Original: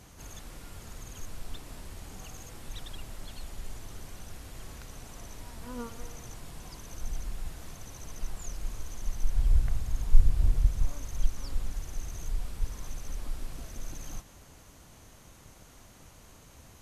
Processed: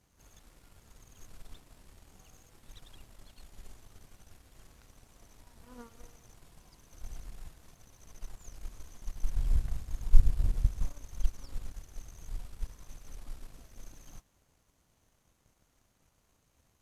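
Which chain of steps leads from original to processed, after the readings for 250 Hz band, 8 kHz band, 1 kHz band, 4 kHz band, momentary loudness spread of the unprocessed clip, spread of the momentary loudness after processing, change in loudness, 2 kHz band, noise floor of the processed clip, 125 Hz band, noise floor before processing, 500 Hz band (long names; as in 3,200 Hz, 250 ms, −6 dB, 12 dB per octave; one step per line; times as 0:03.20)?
−7.0 dB, −9.5 dB, −9.5 dB, −9.5 dB, 24 LU, 24 LU, 0.0 dB, −9.5 dB, −72 dBFS, −4.0 dB, −54 dBFS, −9.0 dB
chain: backwards echo 90 ms −15 dB
power curve on the samples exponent 1.4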